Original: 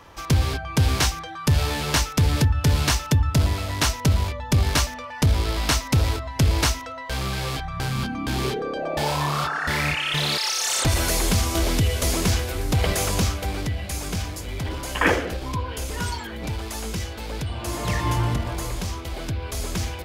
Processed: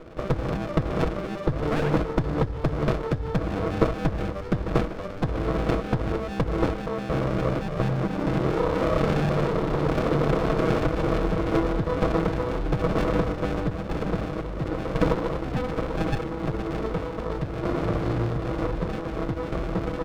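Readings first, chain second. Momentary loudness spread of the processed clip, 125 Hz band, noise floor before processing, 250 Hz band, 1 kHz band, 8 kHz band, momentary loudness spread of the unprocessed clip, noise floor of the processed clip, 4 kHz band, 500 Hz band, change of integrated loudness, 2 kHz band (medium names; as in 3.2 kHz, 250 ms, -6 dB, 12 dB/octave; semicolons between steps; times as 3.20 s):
6 LU, -4.0 dB, -35 dBFS, +2.5 dB, -2.0 dB, under -20 dB, 10 LU, -33 dBFS, -15.0 dB, +5.0 dB, -2.5 dB, -7.5 dB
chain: sample-and-hold 25×; treble shelf 3 kHz -9.5 dB; comb 6.2 ms, depth 80%; compression 6:1, threshold -21 dBFS, peak gain reduction 9.5 dB; painted sound rise, 1.71–1.91 s, 590–2100 Hz -28 dBFS; graphic EQ 500/1000/2000 Hz +7/+10/-9 dB; delay 151 ms -15.5 dB; resampled via 11.025 kHz; sliding maximum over 33 samples; trim -1.5 dB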